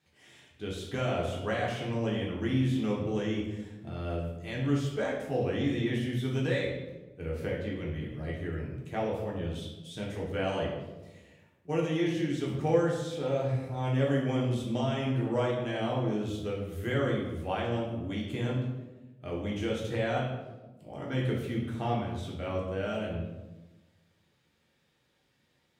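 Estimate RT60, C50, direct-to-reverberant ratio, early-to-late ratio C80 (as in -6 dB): 1.1 s, 3.0 dB, -4.0 dB, 5.5 dB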